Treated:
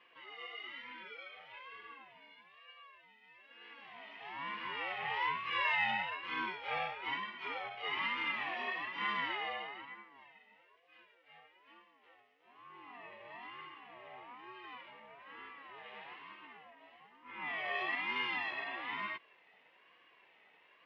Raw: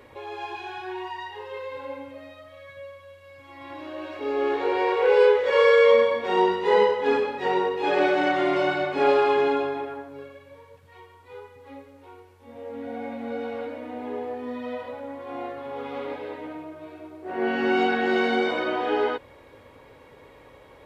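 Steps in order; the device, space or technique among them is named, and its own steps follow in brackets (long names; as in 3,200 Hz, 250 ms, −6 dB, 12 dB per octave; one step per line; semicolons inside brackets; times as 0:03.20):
voice changer toy (ring modulator whose carrier an LFO sweeps 480 Hz, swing 30%, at 1.1 Hz; loudspeaker in its box 570–4,600 Hz, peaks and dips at 600 Hz −4 dB, 870 Hz −8 dB, 1,400 Hz −10 dB, 2,000 Hz +9 dB, 2,900 Hz +6 dB, 4,200 Hz −6 dB)
level −8.5 dB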